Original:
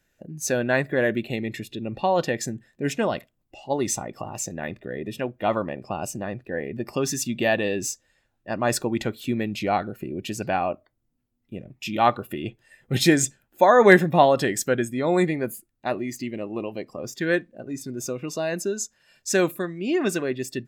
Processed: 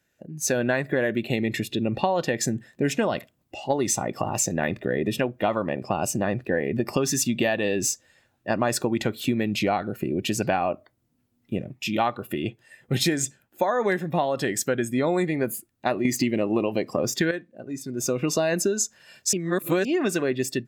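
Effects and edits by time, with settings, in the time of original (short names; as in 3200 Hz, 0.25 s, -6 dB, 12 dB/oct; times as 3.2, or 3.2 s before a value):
16.05–17.31 gain +11 dB
19.33–19.85 reverse
whole clip: AGC gain up to 11.5 dB; HPF 75 Hz; compressor 10:1, threshold -18 dBFS; gain -1.5 dB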